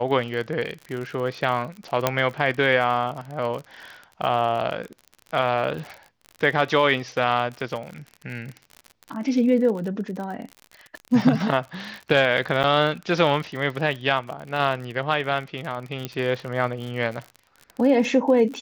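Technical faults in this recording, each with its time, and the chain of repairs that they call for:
surface crackle 50 per second −30 dBFS
0:02.07: click −4 dBFS
0:12.63–0:12.64: drop-out 7.9 ms
0:16.05: click −13 dBFS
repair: click removal
repair the gap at 0:12.63, 7.9 ms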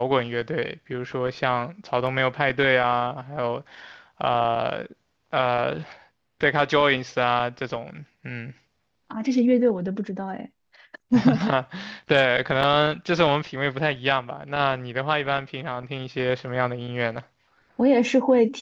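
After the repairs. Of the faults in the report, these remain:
0:02.07: click

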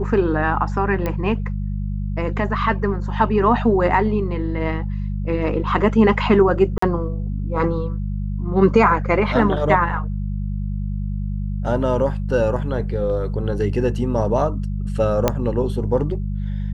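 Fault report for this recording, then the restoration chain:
mains hum 50 Hz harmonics 4 −24 dBFS
0:01.06: click −11 dBFS
0:06.78–0:06.82: drop-out 44 ms
0:15.28: click −3 dBFS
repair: click removal
hum removal 50 Hz, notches 4
repair the gap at 0:06.78, 44 ms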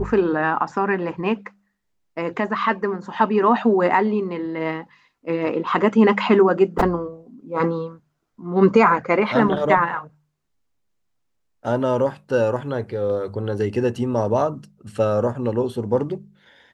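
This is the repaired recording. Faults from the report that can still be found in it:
none of them is left

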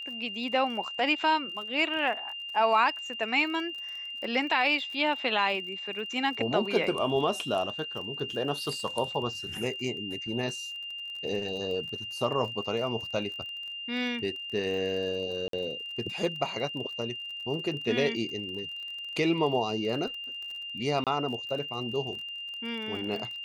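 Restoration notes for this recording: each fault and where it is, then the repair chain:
surface crackle 31 per second −38 dBFS
whistle 2,800 Hz −36 dBFS
0:15.48–0:15.53: drop-out 53 ms
0:21.04–0:21.07: drop-out 27 ms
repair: click removal
notch filter 2,800 Hz, Q 30
repair the gap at 0:15.48, 53 ms
repair the gap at 0:21.04, 27 ms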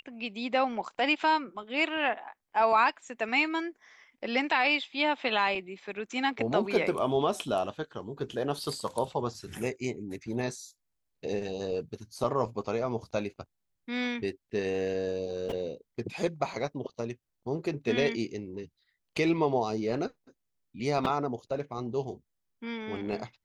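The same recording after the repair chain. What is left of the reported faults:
none of them is left

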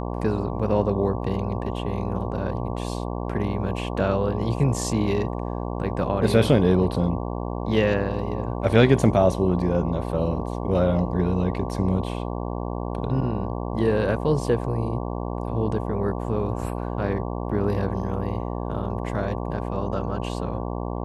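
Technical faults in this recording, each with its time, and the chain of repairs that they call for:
mains buzz 60 Hz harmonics 19 −29 dBFS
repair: hum removal 60 Hz, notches 19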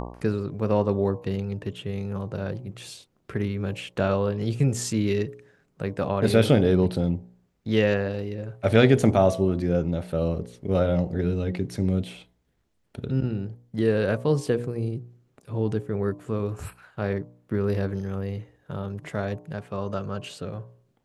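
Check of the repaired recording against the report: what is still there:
none of them is left

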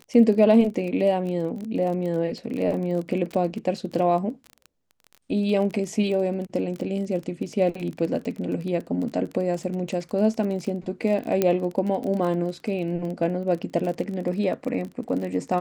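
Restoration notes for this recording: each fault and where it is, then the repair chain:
surface crackle 28 per second −30 dBFS
0:11.42: click −8 dBFS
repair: click removal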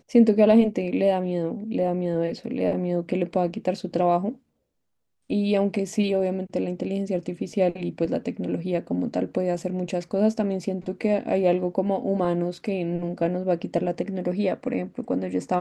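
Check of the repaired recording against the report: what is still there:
none of them is left

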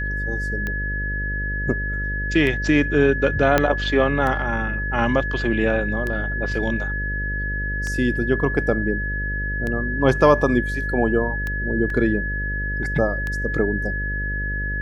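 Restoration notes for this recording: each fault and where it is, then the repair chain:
mains buzz 50 Hz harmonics 12 −27 dBFS
scratch tick 33 1/3 rpm −14 dBFS
whistle 1,700 Hz −26 dBFS
0:03.58: click −3 dBFS
0:11.90: drop-out 2.6 ms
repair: click removal
hum removal 50 Hz, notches 12
notch filter 1,700 Hz, Q 30
repair the gap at 0:11.90, 2.6 ms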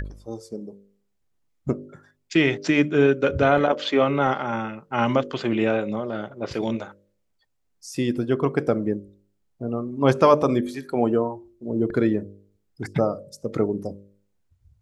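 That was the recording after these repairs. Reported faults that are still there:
0:03.58: click

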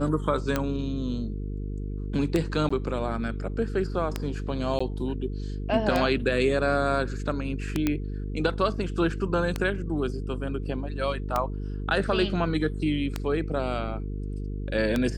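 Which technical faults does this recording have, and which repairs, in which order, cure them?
mains buzz 50 Hz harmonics 9 −32 dBFS
scratch tick 33 1/3 rpm −11 dBFS
0:02.69–0:02.71: drop-out 15 ms
0:04.79–0:04.80: drop-out 15 ms
0:07.87: click −11 dBFS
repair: click removal
hum removal 50 Hz, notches 9
repair the gap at 0:02.69, 15 ms
repair the gap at 0:04.79, 15 ms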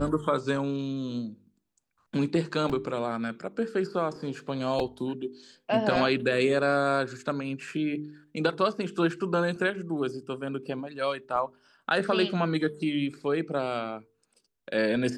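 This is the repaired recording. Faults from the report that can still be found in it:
none of them is left

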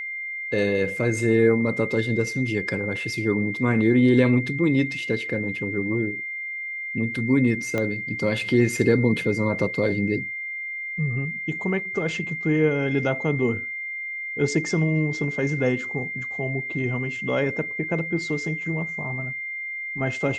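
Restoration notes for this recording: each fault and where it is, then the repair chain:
whistle 2,100 Hz −29 dBFS
0:07.78: click −13 dBFS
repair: click removal
notch filter 2,100 Hz, Q 30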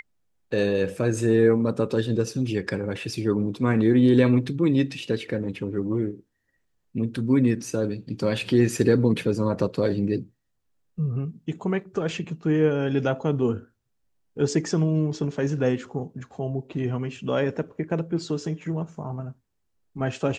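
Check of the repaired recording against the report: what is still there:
0:07.78: click

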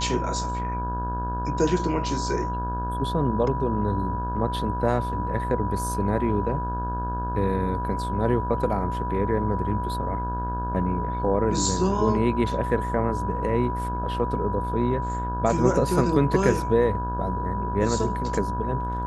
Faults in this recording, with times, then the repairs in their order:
mains buzz 60 Hz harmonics 28 −30 dBFS
whistle 980 Hz −29 dBFS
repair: hum removal 60 Hz, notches 28
notch filter 980 Hz, Q 30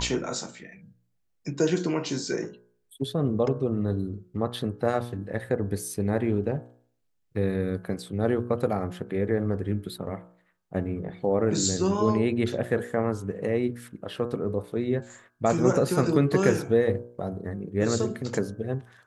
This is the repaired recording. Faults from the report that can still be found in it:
none of them is left

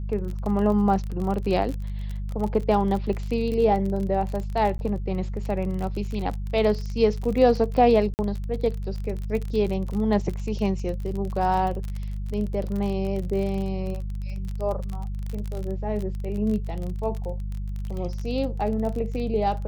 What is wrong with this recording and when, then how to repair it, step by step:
surface crackle 34 per second −29 dBFS
mains hum 50 Hz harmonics 4 −30 dBFS
0:04.78–0:04.79: drop-out 11 ms
0:08.14–0:08.19: drop-out 49 ms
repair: click removal
hum removal 50 Hz, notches 4
repair the gap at 0:04.78, 11 ms
repair the gap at 0:08.14, 49 ms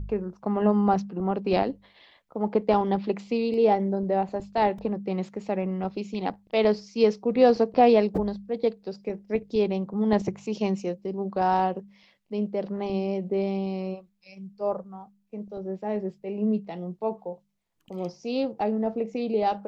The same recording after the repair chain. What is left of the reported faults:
none of them is left

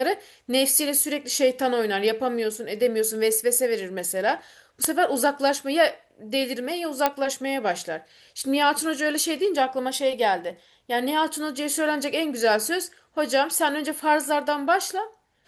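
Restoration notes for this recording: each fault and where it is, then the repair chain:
0:07.06: click −6 dBFS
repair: click removal

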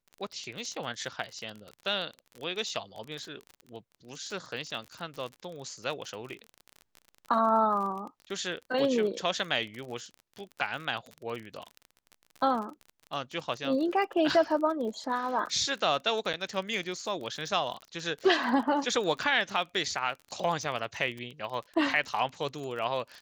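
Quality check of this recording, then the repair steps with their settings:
surface crackle 36 per second −36 dBFS
0:16.33–0:16.34: drop-out 8.1 ms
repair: click removal
repair the gap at 0:16.33, 8.1 ms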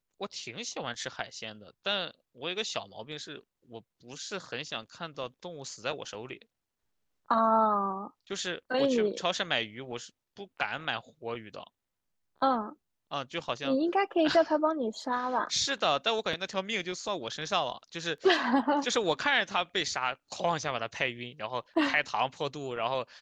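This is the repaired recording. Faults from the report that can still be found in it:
none of them is left

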